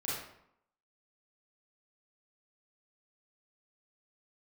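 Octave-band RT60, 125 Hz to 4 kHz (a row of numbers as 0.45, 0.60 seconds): 0.70, 0.75, 0.70, 0.75, 0.60, 0.50 seconds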